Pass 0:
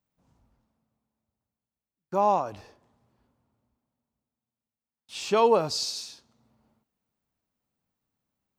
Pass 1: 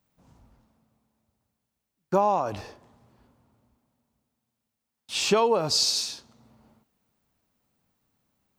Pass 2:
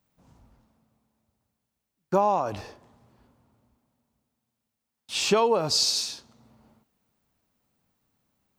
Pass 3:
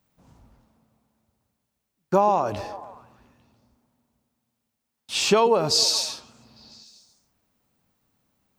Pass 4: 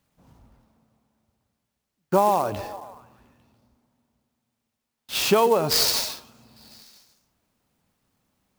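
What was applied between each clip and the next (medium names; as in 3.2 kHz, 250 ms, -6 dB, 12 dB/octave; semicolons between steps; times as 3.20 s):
compression 12:1, threshold -27 dBFS, peak gain reduction 12 dB; trim +9 dB
no audible change
repeats whose band climbs or falls 142 ms, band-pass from 280 Hz, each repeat 0.7 oct, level -12 dB; trim +3 dB
sampling jitter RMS 0.022 ms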